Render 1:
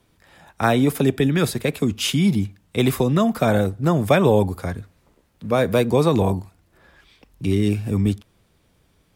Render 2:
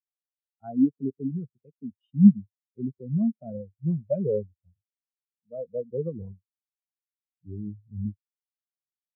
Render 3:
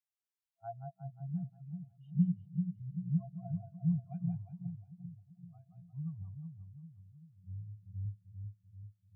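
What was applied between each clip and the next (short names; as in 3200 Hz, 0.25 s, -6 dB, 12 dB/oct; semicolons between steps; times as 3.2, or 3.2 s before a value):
spectral expander 4:1; gain -1 dB
FFT band-reject 190–670 Hz; split-band echo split 360 Hz, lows 0.388 s, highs 0.178 s, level -6 dB; gain -4 dB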